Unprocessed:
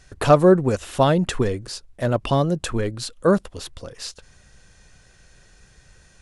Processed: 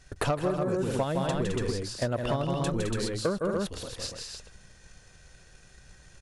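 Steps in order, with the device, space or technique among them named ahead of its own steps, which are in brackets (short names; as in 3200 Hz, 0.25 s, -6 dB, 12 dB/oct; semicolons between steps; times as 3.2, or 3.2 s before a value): loudspeakers at several distances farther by 55 m -4 dB, 73 m -8 dB, 98 m -5 dB; drum-bus smash (transient shaper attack +7 dB, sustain +3 dB; compressor 6:1, threshold -18 dBFS, peak gain reduction 14 dB; soft clip -12 dBFS, distortion -20 dB); gain -5.5 dB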